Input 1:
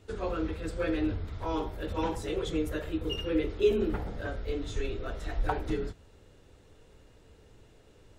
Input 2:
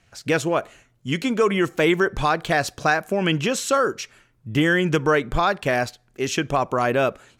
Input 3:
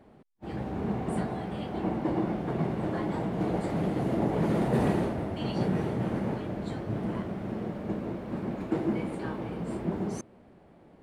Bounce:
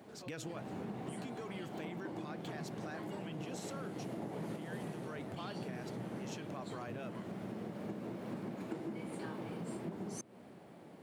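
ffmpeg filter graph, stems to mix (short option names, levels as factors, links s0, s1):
-filter_complex "[0:a]volume=0.106[s0];[1:a]lowshelf=f=180:g=8,volume=0.15,asplit=2[s1][s2];[2:a]volume=1.06[s3];[s2]apad=whole_len=486005[s4];[s3][s4]sidechaincompress=threshold=0.0112:ratio=3:attack=16:release=1250[s5];[s0][s1]amix=inputs=2:normalize=0,equalizer=f=11000:t=o:w=1.6:g=-8,alimiter=level_in=2.51:limit=0.0631:level=0:latency=1:release=16,volume=0.398,volume=1[s6];[s5][s6]amix=inputs=2:normalize=0,highpass=f=110:w=0.5412,highpass=f=110:w=1.3066,highshelf=f=4000:g=10.5,acompressor=threshold=0.01:ratio=6"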